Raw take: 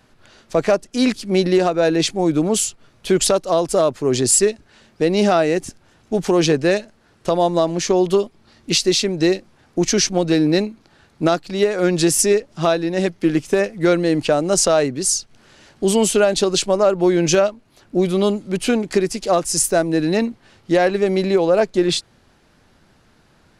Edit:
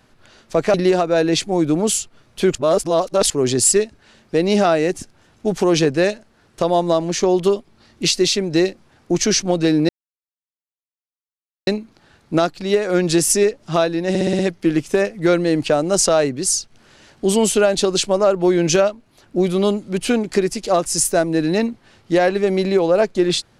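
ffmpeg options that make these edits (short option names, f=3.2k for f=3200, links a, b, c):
-filter_complex "[0:a]asplit=10[a][b][c][d][e][f][g][h][i][j];[a]atrim=end=0.742[k];[b]atrim=start=1.408:end=3.222[l];[c]atrim=start=3.218:end=3.972,asetpts=PTS-STARTPTS,areverse[m];[d]atrim=start=3.968:end=10.56,asetpts=PTS-STARTPTS,afade=t=out:st=6.588:d=0.004:c=hsin,apad=pad_dur=1.78[n];[e]atrim=start=10.56:end=13.042,asetpts=PTS-STARTPTS,afade=t=in:d=0.004:c=hsin[o];[f]atrim=start=12.978:end=13.042[p];[g]atrim=start=12.978:end=13.042[q];[h]atrim=start=12.978:end=13.042[r];[i]atrim=start=12.978:end=13.042[s];[j]atrim=start=12.978[t];[k][l]acrossfade=d=0.004:c1=hsin:c2=hsin[u];[u][m]acrossfade=d=0.004:c1=hsin:c2=hsin[v];[n][o]concat=n=2:v=0:a=1[w];[v][w]acrossfade=d=0.004:c1=hsin:c2=hsin[x];[x][p]acrossfade=d=0.004:c1=hsin:c2=hsin[y];[y][q]acrossfade=d=0.004:c1=hsin:c2=hsin[z];[z][r]acrossfade=d=0.004:c1=hsin:c2=hsin[aa];[aa][s]acrossfade=d=0.004:c1=hsin:c2=hsin[ab];[ab][t]acrossfade=d=0.004:c1=hsin:c2=hsin"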